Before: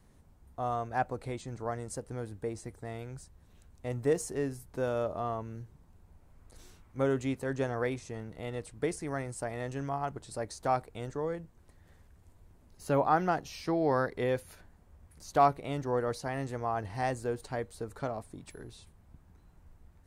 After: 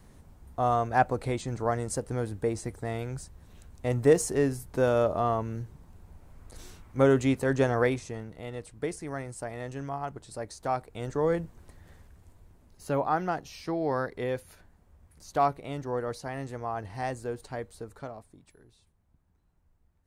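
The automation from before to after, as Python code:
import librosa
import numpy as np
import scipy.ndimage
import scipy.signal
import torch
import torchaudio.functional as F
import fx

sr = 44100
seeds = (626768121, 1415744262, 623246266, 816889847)

y = fx.gain(x, sr, db=fx.line((7.82, 7.5), (8.39, -0.5), (10.81, -0.5), (11.36, 10.0), (13.01, -1.0), (17.75, -1.0), (18.61, -11.5)))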